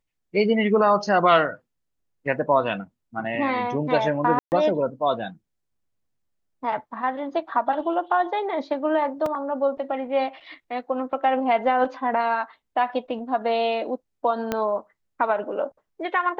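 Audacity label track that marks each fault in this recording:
4.390000	4.520000	dropout 129 ms
9.260000	9.260000	dropout 2.9 ms
14.520000	14.520000	pop -10 dBFS

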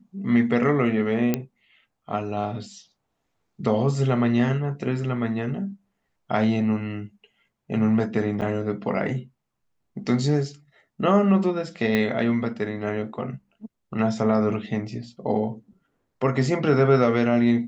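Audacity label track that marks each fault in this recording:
1.340000	1.340000	pop -9 dBFS
8.410000	8.420000	dropout 7.5 ms
11.950000	11.950000	pop -10 dBFS

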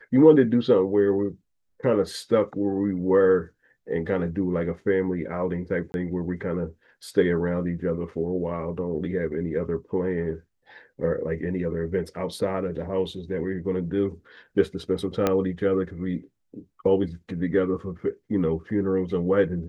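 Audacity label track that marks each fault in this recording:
5.920000	5.940000	dropout 21 ms
15.270000	15.270000	pop -8 dBFS

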